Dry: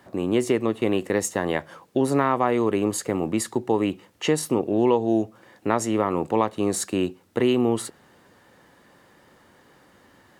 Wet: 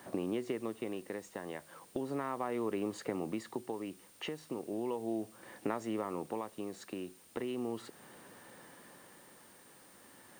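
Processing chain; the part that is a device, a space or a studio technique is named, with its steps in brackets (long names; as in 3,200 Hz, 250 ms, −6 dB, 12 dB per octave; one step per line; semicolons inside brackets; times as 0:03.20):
medium wave at night (band-pass filter 130–3,900 Hz; downward compressor 4 to 1, threshold −34 dBFS, peak gain reduction 16 dB; amplitude tremolo 0.36 Hz, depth 52%; steady tone 9,000 Hz −64 dBFS; white noise bed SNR 23 dB)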